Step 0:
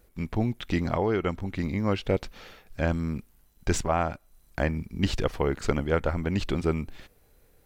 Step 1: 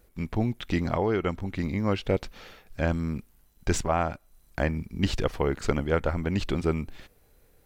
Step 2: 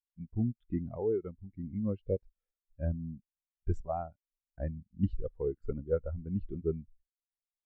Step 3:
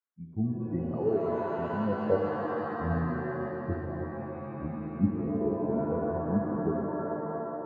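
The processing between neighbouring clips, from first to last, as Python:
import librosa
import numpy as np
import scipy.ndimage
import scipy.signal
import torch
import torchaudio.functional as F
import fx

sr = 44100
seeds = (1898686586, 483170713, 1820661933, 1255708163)

y1 = x
y2 = fx.spectral_expand(y1, sr, expansion=2.5)
y2 = y2 * 10.0 ** (-8.0 / 20.0)
y3 = scipy.signal.sosfilt(scipy.signal.butter(4, 94.0, 'highpass', fs=sr, output='sos'), y2)
y3 = fx.filter_sweep_lowpass(y3, sr, from_hz=1400.0, to_hz=280.0, start_s=1.47, end_s=2.62, q=2.3)
y3 = fx.rev_shimmer(y3, sr, seeds[0], rt60_s=3.3, semitones=7, shimmer_db=-2, drr_db=1.5)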